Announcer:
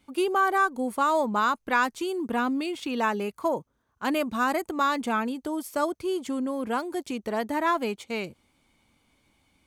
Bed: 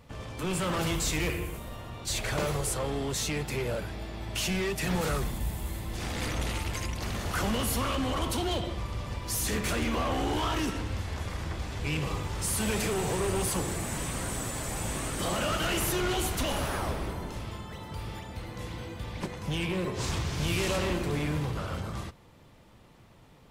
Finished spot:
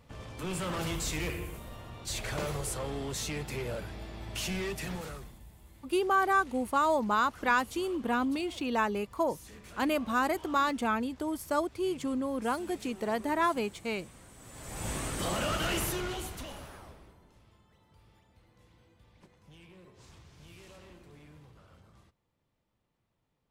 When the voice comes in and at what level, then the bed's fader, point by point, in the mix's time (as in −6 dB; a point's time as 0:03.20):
5.75 s, −3.0 dB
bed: 0:04.73 −4.5 dB
0:05.46 −20.5 dB
0:14.36 −20.5 dB
0:14.88 −2 dB
0:15.76 −2 dB
0:17.20 −24 dB